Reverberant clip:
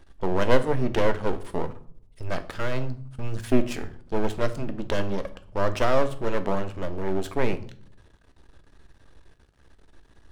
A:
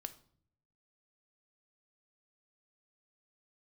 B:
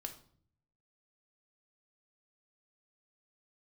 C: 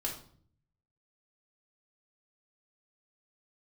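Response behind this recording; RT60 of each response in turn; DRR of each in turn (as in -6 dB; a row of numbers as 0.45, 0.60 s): A; 0.55, 0.55, 0.55 s; 9.0, 4.0, -2.5 dB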